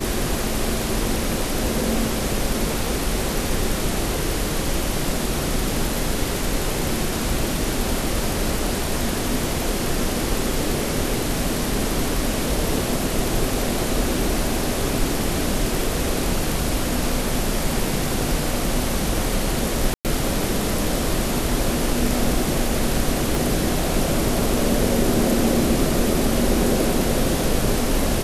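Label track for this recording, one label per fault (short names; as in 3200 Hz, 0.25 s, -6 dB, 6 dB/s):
19.940000	20.050000	gap 0.108 s
23.350000	23.350000	pop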